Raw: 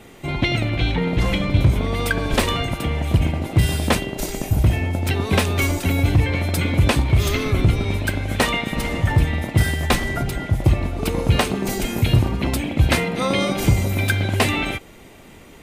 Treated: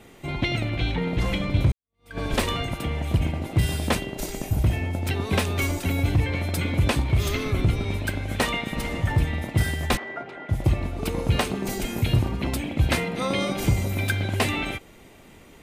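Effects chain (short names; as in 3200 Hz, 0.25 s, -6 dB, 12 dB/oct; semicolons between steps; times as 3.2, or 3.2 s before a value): 1.72–2.19 fade in exponential; 9.97–10.49 BPF 430–2000 Hz; gain -5 dB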